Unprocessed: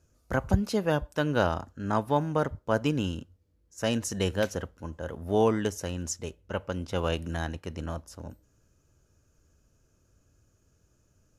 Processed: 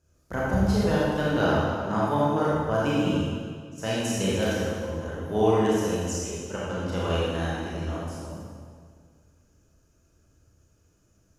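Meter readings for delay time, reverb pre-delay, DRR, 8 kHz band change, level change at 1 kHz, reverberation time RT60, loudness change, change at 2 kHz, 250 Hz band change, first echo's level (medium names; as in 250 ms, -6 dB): no echo, 27 ms, -7.5 dB, +2.5 dB, +3.5 dB, 1.9 s, +3.5 dB, +3.5 dB, +4.5 dB, no echo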